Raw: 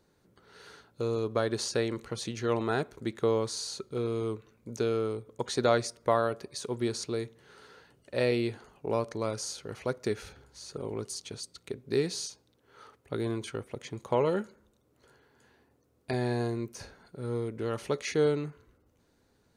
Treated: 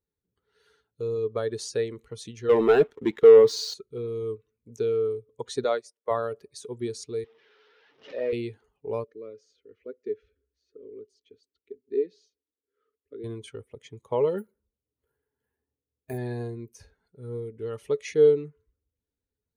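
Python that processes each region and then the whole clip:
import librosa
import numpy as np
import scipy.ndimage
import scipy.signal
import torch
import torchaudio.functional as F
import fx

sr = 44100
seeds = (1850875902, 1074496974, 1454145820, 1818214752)

y = fx.chain(x, sr, fx.bandpass_edges(low_hz=180.0, high_hz=4300.0),
    fx.leveller(passes=3), at=(2.49, 3.74))
y = fx.chain(y, sr, fx.highpass(hz=250.0, slope=12),
    fx.upward_expand(threshold_db=-43.0, expansion=1.5), at=(5.64, 6.11))
y = fx.chain(y, sr, fx.delta_mod(bps=32000, step_db=-42.0),
    fx.bandpass_edges(low_hz=300.0, high_hz=4400.0),
    fx.pre_swell(db_per_s=110.0), at=(7.24, 8.33))
y = fx.chain(y, sr, fx.highpass(hz=130.0, slope=6),
    fx.spacing_loss(db_at_10k=30),
    fx.fixed_phaser(hz=340.0, stages=4), at=(9.04, 13.24))
y = fx.chain(y, sr, fx.high_shelf(hz=4200.0, db=-11.0),
    fx.resample_bad(factor=4, down='none', up='hold'), at=(14.38, 16.18))
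y = fx.bin_expand(y, sr, power=1.5)
y = fx.peak_eq(y, sr, hz=440.0, db=12.5, octaves=0.25)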